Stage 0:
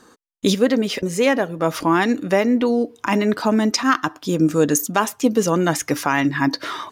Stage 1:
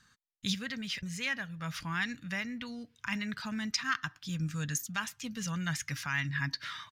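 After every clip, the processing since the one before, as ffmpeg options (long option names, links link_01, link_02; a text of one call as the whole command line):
ffmpeg -i in.wav -af "firequalizer=gain_entry='entry(140,0);entry(330,-30);entry(1600,-3);entry(4300,-3);entry(9600,-11)':delay=0.05:min_phase=1,volume=-6dB" out.wav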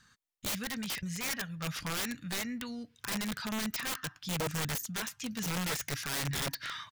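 ffmpeg -i in.wav -af "aeval=exprs='(mod(31.6*val(0)+1,2)-1)/31.6':channel_layout=same,volume=1.5dB" out.wav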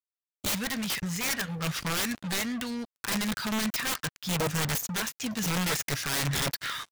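ffmpeg -i in.wav -af "acrusher=bits=6:mix=0:aa=0.5,volume=5.5dB" out.wav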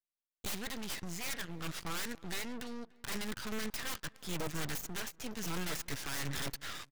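ffmpeg -i in.wav -filter_complex "[0:a]aeval=exprs='max(val(0),0)':channel_layout=same,asplit=2[link_01][link_02];[link_02]adelay=292,lowpass=frequency=2600:poles=1,volume=-23dB,asplit=2[link_03][link_04];[link_04]adelay=292,lowpass=frequency=2600:poles=1,volume=0.41,asplit=2[link_05][link_06];[link_06]adelay=292,lowpass=frequency=2600:poles=1,volume=0.41[link_07];[link_01][link_03][link_05][link_07]amix=inputs=4:normalize=0,volume=-5.5dB" out.wav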